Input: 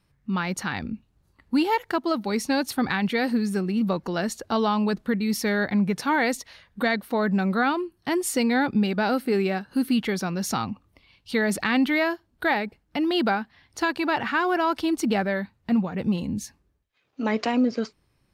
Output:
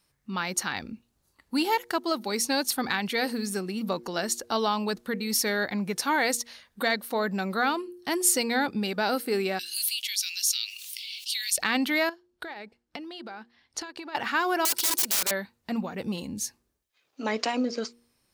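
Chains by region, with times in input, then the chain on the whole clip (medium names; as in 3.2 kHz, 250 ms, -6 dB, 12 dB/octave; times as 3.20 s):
9.59–11.58 s: steep high-pass 2.6 kHz + level flattener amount 70%
12.09–14.15 s: distance through air 60 m + compression 20:1, threshold -33 dBFS + transient shaper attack +3 dB, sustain -6 dB
14.65–15.31 s: tilt EQ +3 dB/octave + comb 2.1 ms, depth 49% + integer overflow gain 24.5 dB
whole clip: tone controls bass -9 dB, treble +10 dB; de-hum 118.4 Hz, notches 4; trim -2 dB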